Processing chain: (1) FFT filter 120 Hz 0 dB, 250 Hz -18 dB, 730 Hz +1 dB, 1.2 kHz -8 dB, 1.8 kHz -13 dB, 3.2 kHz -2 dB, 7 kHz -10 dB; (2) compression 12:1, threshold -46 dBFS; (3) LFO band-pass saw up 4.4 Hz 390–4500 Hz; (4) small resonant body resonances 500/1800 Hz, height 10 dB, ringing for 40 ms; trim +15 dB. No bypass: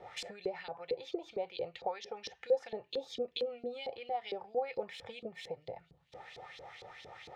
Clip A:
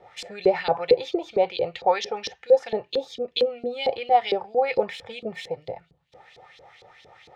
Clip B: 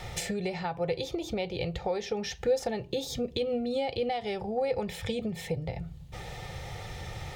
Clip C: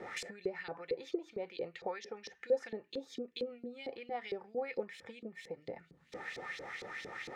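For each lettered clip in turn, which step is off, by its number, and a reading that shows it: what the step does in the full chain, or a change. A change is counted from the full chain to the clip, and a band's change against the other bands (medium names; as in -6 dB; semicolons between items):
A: 2, mean gain reduction 9.5 dB; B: 3, 250 Hz band +8.5 dB; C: 1, momentary loudness spread change -5 LU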